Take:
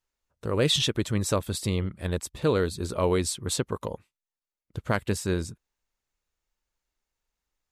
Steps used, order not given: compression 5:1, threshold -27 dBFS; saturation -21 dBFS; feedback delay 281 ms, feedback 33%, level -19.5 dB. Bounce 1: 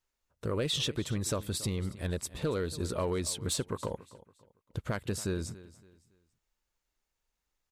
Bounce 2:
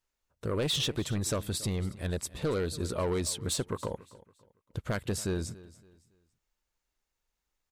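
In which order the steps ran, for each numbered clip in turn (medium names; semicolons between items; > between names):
compression > feedback delay > saturation; saturation > compression > feedback delay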